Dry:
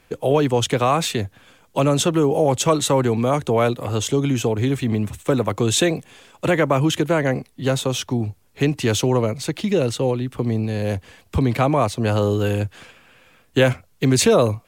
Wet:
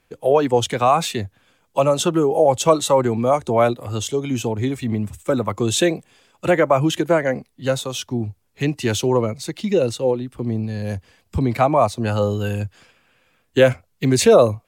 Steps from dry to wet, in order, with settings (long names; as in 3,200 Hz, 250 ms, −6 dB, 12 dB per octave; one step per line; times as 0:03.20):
noise reduction from a noise print of the clip's start 7 dB
dynamic equaliser 640 Hz, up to +7 dB, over −31 dBFS, Q 0.78
level −1.5 dB